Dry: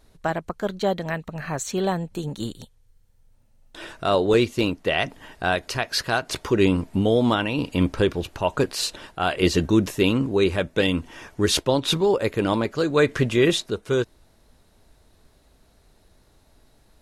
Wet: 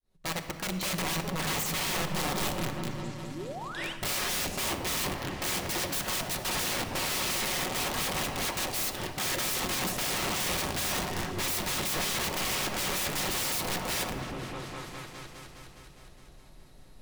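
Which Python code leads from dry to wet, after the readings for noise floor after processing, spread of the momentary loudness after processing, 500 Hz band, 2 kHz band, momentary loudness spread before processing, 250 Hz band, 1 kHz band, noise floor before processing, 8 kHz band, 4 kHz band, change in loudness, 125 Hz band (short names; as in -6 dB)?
-52 dBFS, 10 LU, -15.0 dB, -4.0 dB, 10 LU, -13.5 dB, -5.0 dB, -59 dBFS, +3.5 dB, -3.0 dB, -7.0 dB, -10.0 dB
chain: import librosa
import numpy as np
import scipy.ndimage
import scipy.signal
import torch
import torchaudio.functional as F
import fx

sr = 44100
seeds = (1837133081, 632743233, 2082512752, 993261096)

p1 = fx.fade_in_head(x, sr, length_s=0.93)
p2 = (np.mod(10.0 ** (20.5 / 20.0) * p1 + 1.0, 2.0) - 1.0) / 10.0 ** (20.5 / 20.0)
p3 = p2 + fx.echo_opening(p2, sr, ms=206, hz=200, octaves=1, feedback_pct=70, wet_db=-6, dry=0)
p4 = fx.dynamic_eq(p3, sr, hz=810.0, q=0.81, threshold_db=-39.0, ratio=4.0, max_db=5)
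p5 = (np.mod(10.0 ** (26.5 / 20.0) * p4 + 1.0, 2.0) - 1.0) / 10.0 ** (26.5 / 20.0)
p6 = fx.spec_paint(p5, sr, seeds[0], shape='rise', start_s=3.29, length_s=0.64, low_hz=230.0, high_hz=3300.0, level_db=-40.0)
p7 = fx.peak_eq(p6, sr, hz=1500.0, db=-4.0, octaves=0.21)
y = fx.room_shoebox(p7, sr, seeds[1], volume_m3=2600.0, walls='mixed', distance_m=1.0)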